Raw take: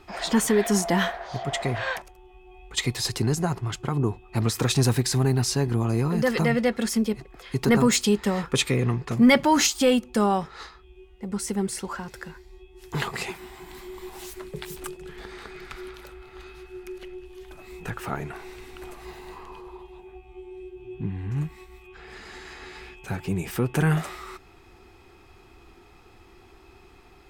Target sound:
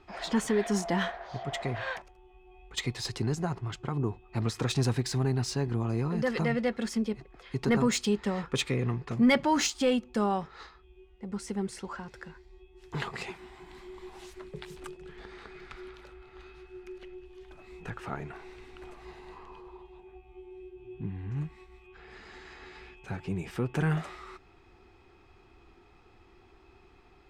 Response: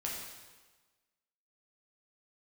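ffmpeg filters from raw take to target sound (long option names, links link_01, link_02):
-af "adynamicsmooth=sensitivity=1.5:basefreq=6300,volume=-6dB"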